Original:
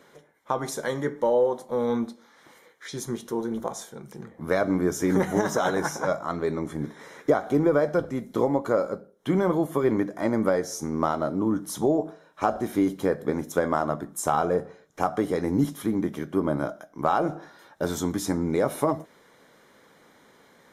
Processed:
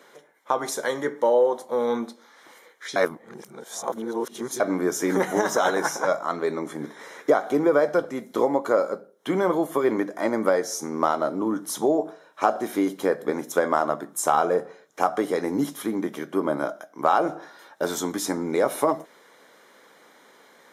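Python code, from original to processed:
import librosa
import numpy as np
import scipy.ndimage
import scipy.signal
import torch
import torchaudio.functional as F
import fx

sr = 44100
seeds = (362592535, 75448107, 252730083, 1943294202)

y = fx.edit(x, sr, fx.reverse_span(start_s=2.96, length_s=1.64), tone=tone)
y = scipy.signal.sosfilt(scipy.signal.bessel(2, 370.0, 'highpass', norm='mag', fs=sr, output='sos'), y)
y = F.gain(torch.from_numpy(y), 4.0).numpy()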